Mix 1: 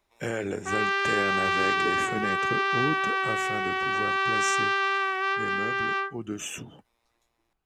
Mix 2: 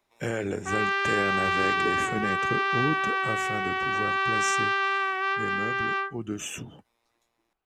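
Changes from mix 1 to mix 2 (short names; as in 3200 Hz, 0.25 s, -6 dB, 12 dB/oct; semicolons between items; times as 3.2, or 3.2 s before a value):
background: add tone controls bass -13 dB, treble -4 dB; master: add low shelf 150 Hz +5 dB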